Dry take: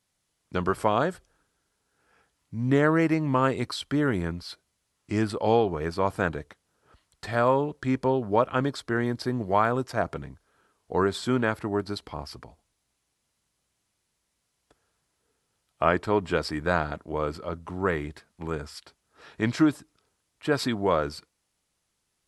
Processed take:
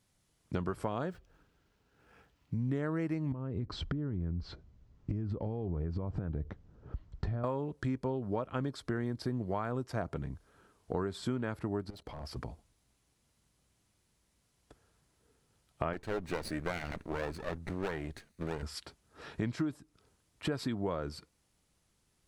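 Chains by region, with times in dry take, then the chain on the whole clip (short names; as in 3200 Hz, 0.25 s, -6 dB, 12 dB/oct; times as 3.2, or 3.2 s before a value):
1.07–2.66 median filter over 5 samples + bell 2700 Hz +4 dB 0.42 oct
3.32–7.44 steep low-pass 7200 Hz + tilt -4 dB/oct + compressor 12:1, threshold -30 dBFS
11.9–12.36 overloaded stage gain 33.5 dB + bell 580 Hz +8 dB 0.73 oct + level quantiser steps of 16 dB
15.93–18.63 minimum comb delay 0.47 ms + low shelf 380 Hz -6 dB
whole clip: low shelf 360 Hz +9 dB; compressor 5:1, threshold -33 dBFS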